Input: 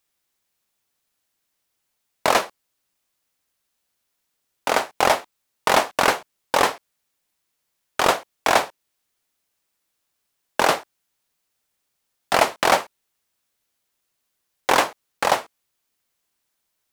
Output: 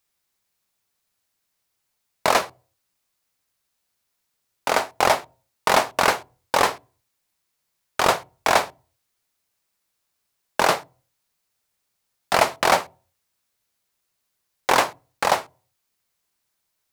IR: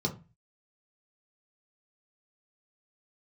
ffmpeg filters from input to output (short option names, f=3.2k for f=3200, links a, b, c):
-filter_complex "[0:a]asplit=2[a][b];[1:a]atrim=start_sample=2205,asetrate=33075,aresample=44100[c];[b][c]afir=irnorm=-1:irlink=0,volume=-25dB[d];[a][d]amix=inputs=2:normalize=0"